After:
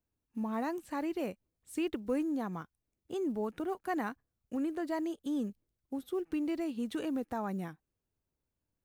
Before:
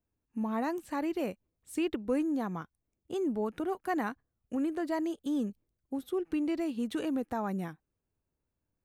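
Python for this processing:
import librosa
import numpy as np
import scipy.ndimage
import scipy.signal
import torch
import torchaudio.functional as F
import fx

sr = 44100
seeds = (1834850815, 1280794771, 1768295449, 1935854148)

y = fx.block_float(x, sr, bits=7)
y = F.gain(torch.from_numpy(y), -2.5).numpy()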